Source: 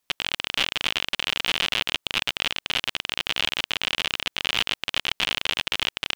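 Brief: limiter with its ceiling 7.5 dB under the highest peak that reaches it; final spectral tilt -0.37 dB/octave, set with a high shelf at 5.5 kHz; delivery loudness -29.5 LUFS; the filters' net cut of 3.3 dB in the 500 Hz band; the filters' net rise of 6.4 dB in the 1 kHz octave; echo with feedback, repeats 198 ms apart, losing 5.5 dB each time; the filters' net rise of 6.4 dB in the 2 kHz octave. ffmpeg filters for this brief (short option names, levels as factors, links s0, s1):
-af "equalizer=f=500:t=o:g=-7.5,equalizer=f=1000:t=o:g=7.5,equalizer=f=2000:t=o:g=8,highshelf=f=5500:g=-5.5,alimiter=limit=0.422:level=0:latency=1,aecho=1:1:198|396|594|792|990|1188|1386:0.531|0.281|0.149|0.079|0.0419|0.0222|0.0118,volume=0.447"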